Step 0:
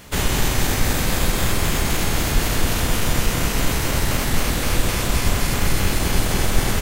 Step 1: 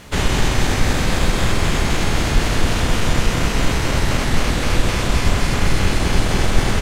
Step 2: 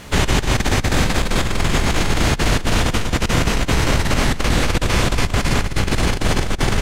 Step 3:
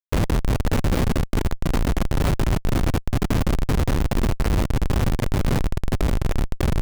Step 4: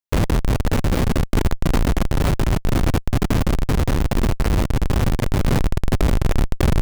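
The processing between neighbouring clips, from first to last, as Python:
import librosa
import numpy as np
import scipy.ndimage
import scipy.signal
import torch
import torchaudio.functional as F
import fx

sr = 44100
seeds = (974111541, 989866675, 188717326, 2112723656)

y1 = fx.dmg_noise_colour(x, sr, seeds[0], colour='violet', level_db=-44.0)
y1 = fx.air_absorb(y1, sr, metres=60.0)
y1 = F.gain(torch.from_numpy(y1), 3.0).numpy()
y2 = fx.over_compress(y1, sr, threshold_db=-17.0, ratio=-0.5)
y2 = F.gain(torch.from_numpy(y2), 1.0).numpy()
y3 = fx.schmitt(y2, sr, flips_db=-15.0)
y3 = fx.low_shelf(y3, sr, hz=320.0, db=3.0)
y3 = F.gain(torch.from_numpy(y3), -4.0).numpy()
y4 = fx.rider(y3, sr, range_db=10, speed_s=0.5)
y4 = F.gain(torch.from_numpy(y4), 2.5).numpy()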